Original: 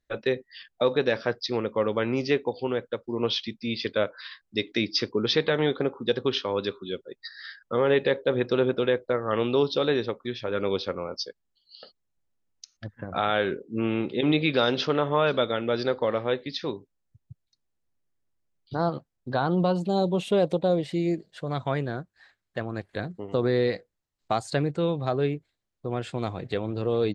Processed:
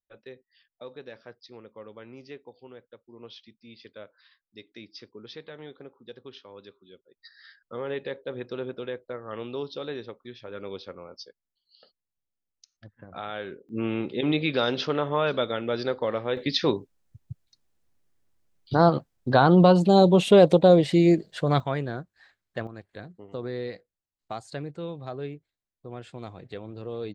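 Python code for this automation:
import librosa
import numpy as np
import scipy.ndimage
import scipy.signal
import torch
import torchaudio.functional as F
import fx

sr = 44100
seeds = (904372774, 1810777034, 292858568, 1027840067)

y = fx.gain(x, sr, db=fx.steps((0.0, -19.0), (7.17, -10.5), (13.69, -2.0), (16.37, 7.5), (21.6, -1.0), (22.67, -9.5)))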